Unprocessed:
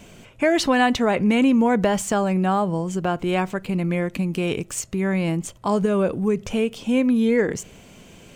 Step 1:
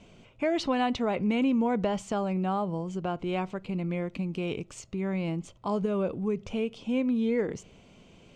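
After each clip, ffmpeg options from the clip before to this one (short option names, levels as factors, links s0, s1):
-af "lowpass=4800,equalizer=f=1700:w=3.7:g=-8,volume=0.398"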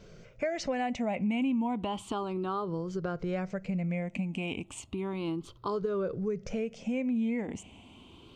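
-af "afftfilt=real='re*pow(10,13/40*sin(2*PI*(0.58*log(max(b,1)*sr/1024/100)/log(2)-(0.33)*(pts-256)/sr)))':imag='im*pow(10,13/40*sin(2*PI*(0.58*log(max(b,1)*sr/1024/100)/log(2)-(0.33)*(pts-256)/sr)))':win_size=1024:overlap=0.75,acompressor=threshold=0.0282:ratio=2.5"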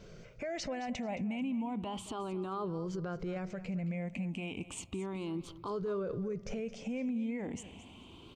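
-af "alimiter=level_in=2:limit=0.0631:level=0:latency=1:release=27,volume=0.501,aecho=1:1:219|438:0.168|0.0403"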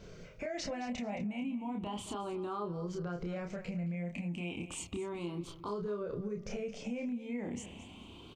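-filter_complex "[0:a]asplit=2[s0][s1];[s1]adelay=29,volume=0.708[s2];[s0][s2]amix=inputs=2:normalize=0,acompressor=threshold=0.02:ratio=6"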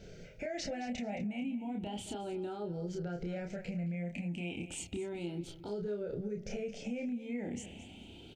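-af "asuperstop=centerf=1100:order=4:qfactor=2"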